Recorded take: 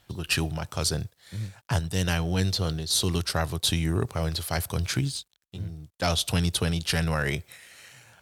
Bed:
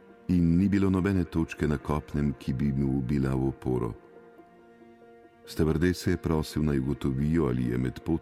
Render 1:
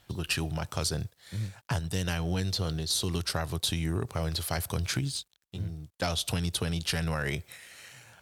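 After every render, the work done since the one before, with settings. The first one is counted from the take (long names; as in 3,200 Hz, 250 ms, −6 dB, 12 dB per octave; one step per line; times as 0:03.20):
downward compressor, threshold −26 dBFS, peak gain reduction 7 dB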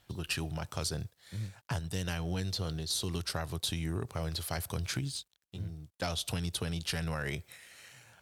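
level −4.5 dB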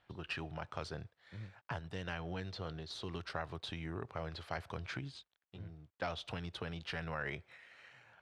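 low-pass filter 2,200 Hz 12 dB per octave
low-shelf EQ 350 Hz −10.5 dB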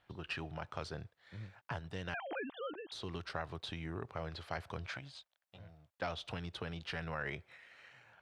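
0:02.14–0:02.92: three sine waves on the formant tracks
0:04.88–0:05.97: low shelf with overshoot 470 Hz −6.5 dB, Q 3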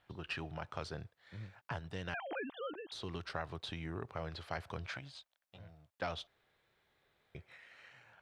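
0:06.27–0:07.35: fill with room tone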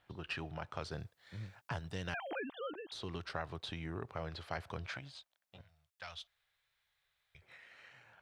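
0:00.91–0:02.40: bass and treble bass +2 dB, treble +7 dB
0:05.61–0:07.42: guitar amp tone stack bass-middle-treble 10-0-10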